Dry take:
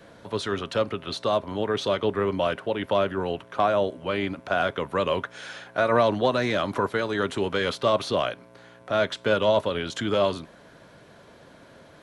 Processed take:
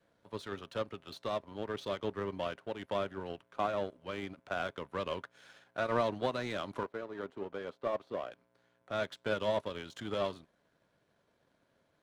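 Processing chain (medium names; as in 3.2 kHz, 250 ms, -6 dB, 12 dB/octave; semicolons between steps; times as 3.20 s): 6.83–8.32 s: band-pass filter 510 Hz, Q 0.63; power-law waveshaper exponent 1.4; trim -8 dB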